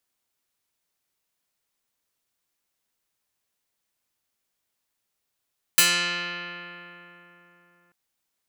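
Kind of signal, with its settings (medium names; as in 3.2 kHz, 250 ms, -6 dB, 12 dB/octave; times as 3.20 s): plucked string F3, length 2.14 s, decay 3.82 s, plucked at 0.45, medium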